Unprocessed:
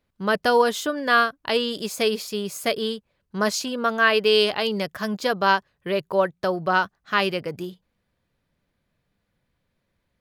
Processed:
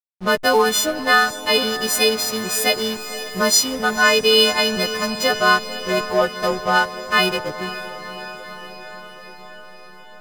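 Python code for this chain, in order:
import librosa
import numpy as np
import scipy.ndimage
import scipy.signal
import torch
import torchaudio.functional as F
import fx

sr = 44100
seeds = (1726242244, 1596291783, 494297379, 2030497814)

y = fx.freq_snap(x, sr, grid_st=3)
y = fx.backlash(y, sr, play_db=-24.0)
y = fx.echo_diffused(y, sr, ms=513, feedback_pct=68, wet_db=-13)
y = F.gain(torch.from_numpy(y), 3.0).numpy()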